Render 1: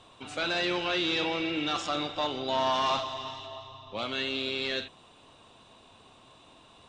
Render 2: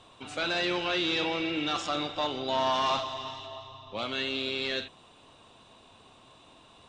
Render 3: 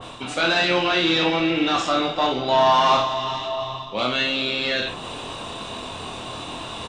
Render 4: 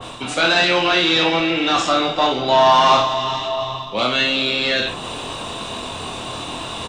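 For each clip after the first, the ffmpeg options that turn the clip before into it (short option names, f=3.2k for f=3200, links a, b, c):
-af anull
-af "areverse,acompressor=mode=upward:threshold=-31dB:ratio=2.5,areverse,aecho=1:1:24|56:0.631|0.473,adynamicequalizer=threshold=0.00891:dfrequency=2300:dqfactor=0.7:tfrequency=2300:tqfactor=0.7:attack=5:release=100:ratio=0.375:range=2:mode=cutabove:tftype=highshelf,volume=8.5dB"
-filter_complex "[0:a]acrossover=split=420|750[a][b][c];[a]alimiter=level_in=0.5dB:limit=-24dB:level=0:latency=1,volume=-0.5dB[d];[c]crystalizer=i=0.5:c=0[e];[d][b][e]amix=inputs=3:normalize=0,volume=4dB"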